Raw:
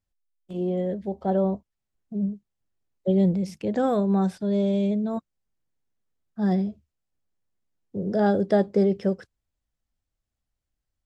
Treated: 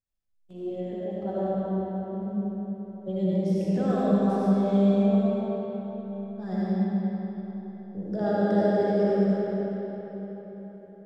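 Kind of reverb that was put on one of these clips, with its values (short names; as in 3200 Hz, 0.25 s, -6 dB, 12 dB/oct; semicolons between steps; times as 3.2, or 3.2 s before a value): digital reverb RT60 4.5 s, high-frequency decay 0.7×, pre-delay 35 ms, DRR -9 dB; gain -10.5 dB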